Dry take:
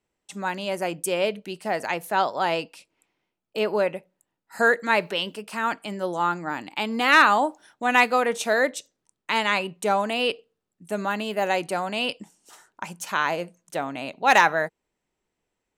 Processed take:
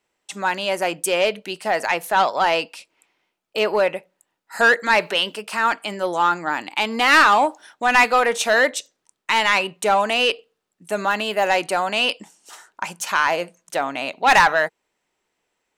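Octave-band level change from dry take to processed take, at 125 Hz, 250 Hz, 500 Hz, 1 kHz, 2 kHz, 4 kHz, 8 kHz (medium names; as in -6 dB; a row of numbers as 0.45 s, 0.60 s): -1.0 dB, 0.0 dB, +3.5 dB, +4.5 dB, +5.0 dB, +6.5 dB, +6.5 dB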